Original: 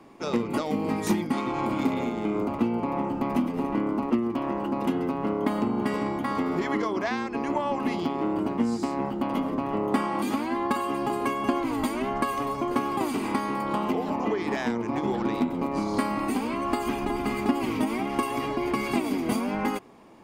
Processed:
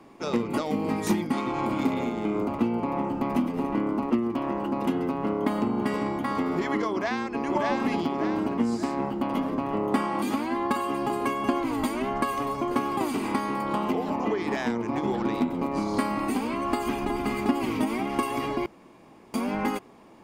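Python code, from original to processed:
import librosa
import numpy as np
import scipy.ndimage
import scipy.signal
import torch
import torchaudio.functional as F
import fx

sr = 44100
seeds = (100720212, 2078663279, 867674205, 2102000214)

y = fx.echo_throw(x, sr, start_s=6.92, length_s=0.5, ms=590, feedback_pct=45, wet_db=-2.0)
y = fx.edit(y, sr, fx.room_tone_fill(start_s=18.66, length_s=0.68), tone=tone)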